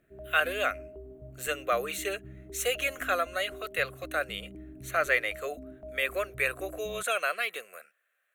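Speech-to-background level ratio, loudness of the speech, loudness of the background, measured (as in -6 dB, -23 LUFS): 16.5 dB, -30.5 LUFS, -47.0 LUFS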